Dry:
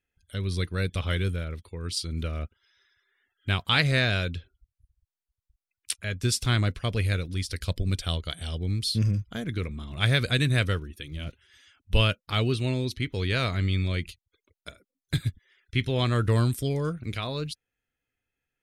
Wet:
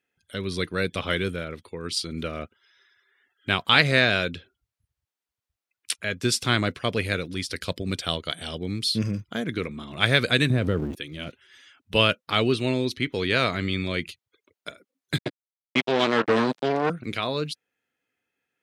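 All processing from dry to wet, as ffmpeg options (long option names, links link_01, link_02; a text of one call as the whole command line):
ffmpeg -i in.wav -filter_complex "[0:a]asettb=1/sr,asplit=3[link_01][link_02][link_03];[link_01]atrim=end=10.504[link_04];[link_02]atrim=start=10.5:end=10.95,asetpts=PTS-STARTPTS,afade=type=in:duration=0.004:curve=qsin,afade=type=out:start_time=0.446:duration=0.004:curve=qsin,aeval=exprs='val(0)+0.5*0.015*sgn(val(0))':channel_layout=same,acompressor=threshold=-25dB:ratio=3:attack=3.2:release=140:knee=1:detection=peak,tiltshelf=frequency=760:gain=9.5[link_05];[link_03]atrim=start=10.946[link_06];[link_04][link_05]acrossfade=duration=0.004:curve1=hsin:curve2=qsin[link_07];[link_07][link_06]acrossfade=duration=0.004:curve1=qsin:curve2=hsin,asettb=1/sr,asplit=3[link_08][link_09][link_10];[link_08]atrim=end=15.184[link_11];[link_09]atrim=start=15.18:end=16.9,asetpts=PTS-STARTPTS,afade=type=in:duration=0.004:curve=qsin,afade=type=out:start_time=1.716:duration=0.004:curve=qsin,asplit=2[link_12][link_13];[link_13]adelay=13,volume=-12dB[link_14];[link_12][link_14]amix=inputs=2:normalize=0,atrim=end_sample=75852,acrusher=bits=3:mix=0:aa=0.5,highpass=180,lowpass=4500[link_15];[link_10]atrim=start=16.896[link_16];[link_11][link_15]acrossfade=duration=0.004:curve1=hsin:curve2=qsin[link_17];[link_17][link_16]acrossfade=duration=0.004:curve1=qsin:curve2=hsin,highpass=210,highshelf=frequency=5200:gain=-7,volume=6.5dB" out.wav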